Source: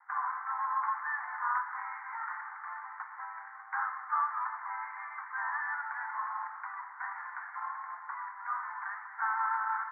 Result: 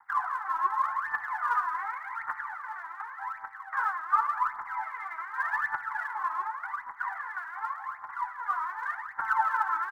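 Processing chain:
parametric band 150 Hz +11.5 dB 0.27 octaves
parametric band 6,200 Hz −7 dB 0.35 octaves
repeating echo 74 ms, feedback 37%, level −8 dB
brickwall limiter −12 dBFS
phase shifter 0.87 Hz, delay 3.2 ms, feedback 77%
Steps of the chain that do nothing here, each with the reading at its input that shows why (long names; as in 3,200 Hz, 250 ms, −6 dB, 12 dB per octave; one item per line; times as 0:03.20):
parametric band 150 Hz: nothing at its input below 640 Hz
parametric band 6,200 Hz: nothing at its input above 2,200 Hz
brickwall limiter −12 dBFS: peak of its input −19.0 dBFS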